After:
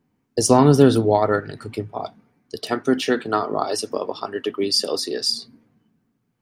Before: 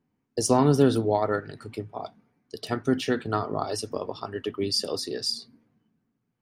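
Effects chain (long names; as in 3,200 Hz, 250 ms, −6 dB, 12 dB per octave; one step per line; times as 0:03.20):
0:02.59–0:05.29: high-pass filter 230 Hz 12 dB per octave
level +6.5 dB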